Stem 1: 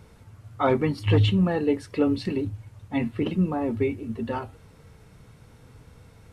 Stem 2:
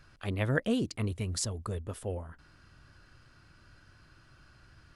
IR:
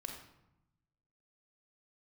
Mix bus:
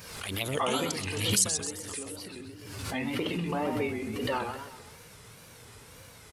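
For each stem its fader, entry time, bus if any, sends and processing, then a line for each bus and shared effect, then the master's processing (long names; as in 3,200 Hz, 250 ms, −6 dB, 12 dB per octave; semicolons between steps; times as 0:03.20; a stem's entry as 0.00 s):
0:00.85 −2.5 dB → 0:01.50 −12.5 dB → 0:02.37 −12.5 dB → 0:03.10 0 dB, 0.00 s, send −3.5 dB, echo send −4 dB, downward compressor, threshold −26 dBFS, peak gain reduction 11 dB
0.0 dB, 0.00 s, no send, echo send −11.5 dB, flanger swept by the level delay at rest 3.7 ms, full sweep at −27 dBFS; high-shelf EQ 2,700 Hz +10.5 dB; automatic ducking −6 dB, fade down 1.60 s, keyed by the first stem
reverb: on, RT60 0.90 s, pre-delay 34 ms
echo: repeating echo 127 ms, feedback 46%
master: tape wow and flutter 130 cents; spectral tilt +3 dB per octave; background raised ahead of every attack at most 44 dB per second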